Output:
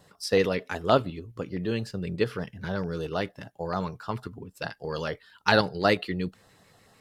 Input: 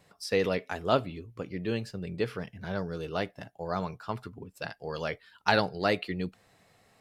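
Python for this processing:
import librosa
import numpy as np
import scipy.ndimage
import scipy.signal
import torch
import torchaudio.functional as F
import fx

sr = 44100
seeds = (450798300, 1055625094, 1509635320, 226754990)

p1 = fx.level_steps(x, sr, step_db=13)
p2 = x + (p1 * 10.0 ** (0.0 / 20.0))
y = fx.filter_lfo_notch(p2, sr, shape='square', hz=6.7, low_hz=700.0, high_hz=2300.0, q=2.4)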